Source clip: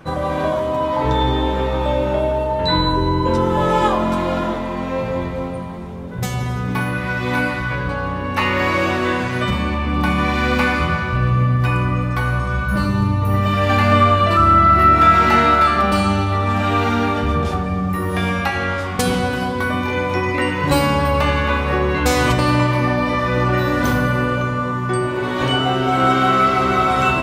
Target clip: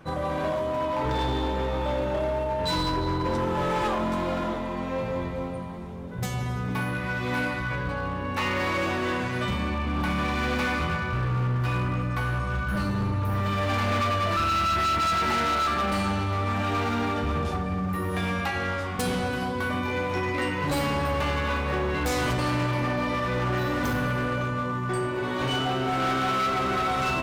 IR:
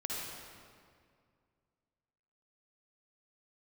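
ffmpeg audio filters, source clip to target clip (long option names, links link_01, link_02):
-af "asoftclip=type=hard:threshold=-15.5dB,volume=-7dB"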